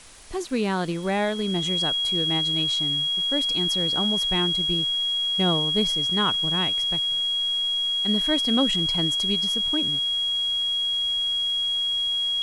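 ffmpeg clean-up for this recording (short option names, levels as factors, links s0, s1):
-af "adeclick=t=4,bandreject=f=3300:w=30,afwtdn=0.005"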